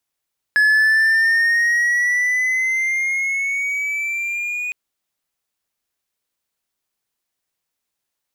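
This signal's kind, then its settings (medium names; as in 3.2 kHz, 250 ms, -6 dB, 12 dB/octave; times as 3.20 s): gliding synth tone triangle, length 4.16 s, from 1.7 kHz, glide +6.5 st, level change -11 dB, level -9 dB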